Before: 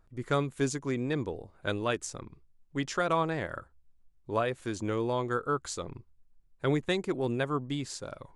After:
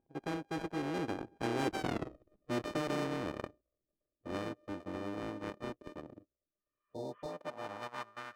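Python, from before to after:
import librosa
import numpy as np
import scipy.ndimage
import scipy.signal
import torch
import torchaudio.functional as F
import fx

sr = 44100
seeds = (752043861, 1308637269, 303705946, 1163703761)

p1 = np.r_[np.sort(x[:len(x) // 64 * 64].reshape(-1, 64), axis=1).ravel(), x[len(x) // 64 * 64:]]
p2 = fx.doppler_pass(p1, sr, speed_mps=50, closest_m=7.8, pass_at_s=1.95)
p3 = fx.leveller(p2, sr, passes=2)
p4 = fx.schmitt(p3, sr, flips_db=-39.0)
p5 = p3 + F.gain(torch.from_numpy(p4), -10.5).numpy()
p6 = fx.spec_repair(p5, sr, seeds[0], start_s=6.49, length_s=0.82, low_hz=960.0, high_hz=3500.0, source='both')
p7 = fx.filter_sweep_bandpass(p6, sr, from_hz=320.0, to_hz=1400.0, start_s=6.74, end_s=8.3, q=3.7)
p8 = fx.spectral_comp(p7, sr, ratio=2.0)
y = F.gain(torch.from_numpy(p8), 16.0).numpy()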